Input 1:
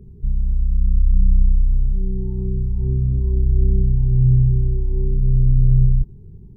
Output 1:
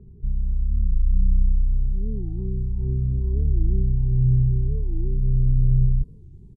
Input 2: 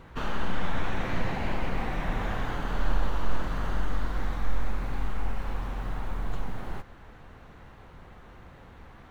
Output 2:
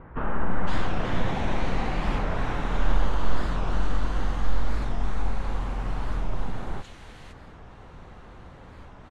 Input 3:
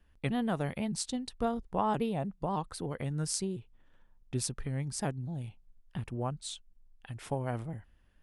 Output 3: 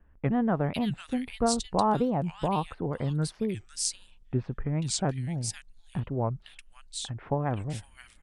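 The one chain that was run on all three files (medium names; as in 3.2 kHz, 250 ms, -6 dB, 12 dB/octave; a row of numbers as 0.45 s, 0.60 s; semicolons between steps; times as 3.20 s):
low-pass 9.8 kHz 24 dB/octave; bands offset in time lows, highs 510 ms, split 2 kHz; warped record 45 rpm, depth 250 cents; peak normalisation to -9 dBFS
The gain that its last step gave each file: -4.5 dB, +3.5 dB, +5.5 dB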